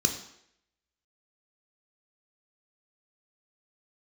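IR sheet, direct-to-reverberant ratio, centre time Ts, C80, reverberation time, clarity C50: 4.5 dB, 18 ms, 11.5 dB, 0.70 s, 9.0 dB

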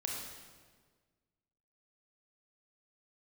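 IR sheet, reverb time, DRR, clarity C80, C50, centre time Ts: 1.6 s, -1.5 dB, 3.0 dB, 1.0 dB, 72 ms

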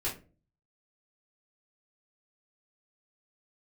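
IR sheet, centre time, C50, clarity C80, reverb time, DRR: 23 ms, 9.5 dB, 16.5 dB, 0.35 s, -7.0 dB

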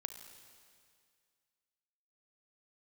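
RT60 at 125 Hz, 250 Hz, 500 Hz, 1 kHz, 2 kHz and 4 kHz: 2.1 s, 2.1 s, 2.1 s, 2.1 s, 2.1 s, 2.1 s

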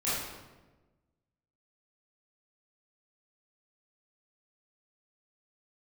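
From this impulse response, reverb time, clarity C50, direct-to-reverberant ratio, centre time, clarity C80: 1.2 s, -2.0 dB, -11.5 dB, 86 ms, 2.0 dB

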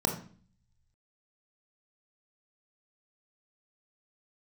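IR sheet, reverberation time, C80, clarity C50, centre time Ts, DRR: 0.45 s, 13.0 dB, 8.0 dB, 19 ms, 3.0 dB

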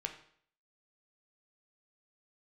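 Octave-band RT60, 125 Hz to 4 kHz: 0.60 s, 0.55 s, 0.60 s, 0.60 s, 0.55 s, 0.55 s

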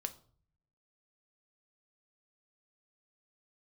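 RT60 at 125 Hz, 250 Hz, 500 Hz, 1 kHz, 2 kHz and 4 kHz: 1.1 s, 0.80 s, 0.50 s, 0.45 s, 0.35 s, 0.35 s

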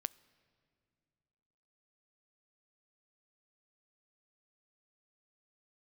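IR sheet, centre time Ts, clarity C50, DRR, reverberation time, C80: 2 ms, 22.0 dB, 19.0 dB, 2.4 s, 23.0 dB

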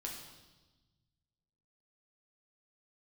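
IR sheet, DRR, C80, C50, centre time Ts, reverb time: -1.5 dB, 6.0 dB, 4.0 dB, 45 ms, 1.2 s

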